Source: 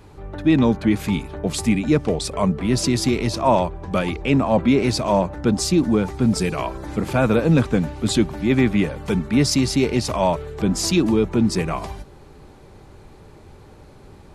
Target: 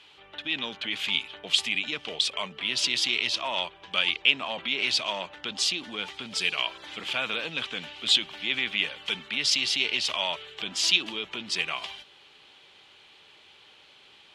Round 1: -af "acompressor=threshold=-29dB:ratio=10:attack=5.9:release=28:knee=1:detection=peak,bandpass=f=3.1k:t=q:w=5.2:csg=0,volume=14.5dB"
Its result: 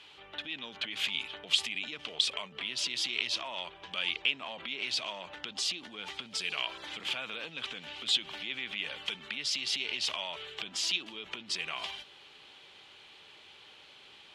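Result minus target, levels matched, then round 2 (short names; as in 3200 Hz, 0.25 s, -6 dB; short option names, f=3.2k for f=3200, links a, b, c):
compressor: peak gain reduction +10 dB
-af "acompressor=threshold=-18dB:ratio=10:attack=5.9:release=28:knee=1:detection=peak,bandpass=f=3.1k:t=q:w=5.2:csg=0,volume=14.5dB"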